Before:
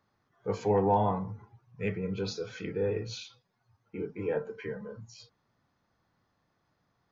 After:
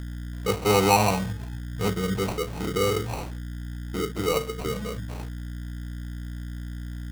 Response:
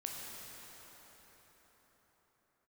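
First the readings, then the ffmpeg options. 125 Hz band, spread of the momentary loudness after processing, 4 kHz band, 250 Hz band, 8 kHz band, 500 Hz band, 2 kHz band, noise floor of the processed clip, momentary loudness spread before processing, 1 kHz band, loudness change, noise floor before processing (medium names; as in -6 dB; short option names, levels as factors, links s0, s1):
+8.0 dB, 16 LU, +13.0 dB, +6.5 dB, no reading, +5.0 dB, +12.0 dB, -35 dBFS, 19 LU, +6.5 dB, +5.0 dB, -77 dBFS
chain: -filter_complex "[0:a]aeval=exprs='val(0)+0.00631*(sin(2*PI*60*n/s)+sin(2*PI*2*60*n/s)/2+sin(2*PI*3*60*n/s)/3+sin(2*PI*4*60*n/s)/4+sin(2*PI*5*60*n/s)/5)':c=same,asplit=2[s0][s1];[s1]acompressor=threshold=0.00794:ratio=6,volume=1.41[s2];[s0][s2]amix=inputs=2:normalize=0,acrusher=samples=26:mix=1:aa=0.000001,volume=1.58"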